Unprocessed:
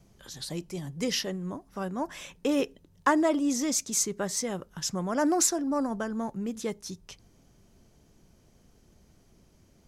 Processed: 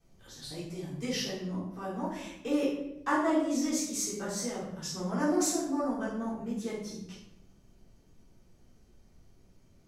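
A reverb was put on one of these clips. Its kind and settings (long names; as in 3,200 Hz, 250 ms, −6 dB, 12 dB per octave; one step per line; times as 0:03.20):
rectangular room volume 250 cubic metres, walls mixed, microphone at 3.7 metres
level −14.5 dB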